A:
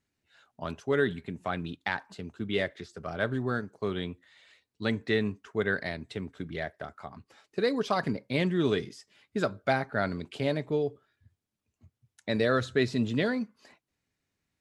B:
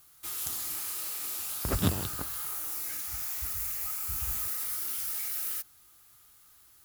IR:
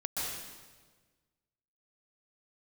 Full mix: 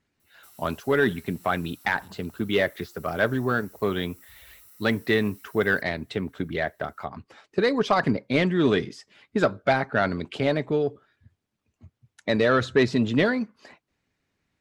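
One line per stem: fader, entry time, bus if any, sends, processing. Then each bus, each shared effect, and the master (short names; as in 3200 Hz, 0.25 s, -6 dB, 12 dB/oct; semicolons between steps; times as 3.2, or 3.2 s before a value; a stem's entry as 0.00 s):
-3.0 dB, 0.00 s, no send, harmonic-percussive split percussive +5 dB; low shelf 310 Hz +12 dB; overdrive pedal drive 13 dB, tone 3100 Hz, clips at -5 dBFS
-11.5 dB, 0.20 s, no send, ripple EQ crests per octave 2, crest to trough 7 dB; compressor 2.5:1, threshold -42 dBFS, peak gain reduction 15 dB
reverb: off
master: dry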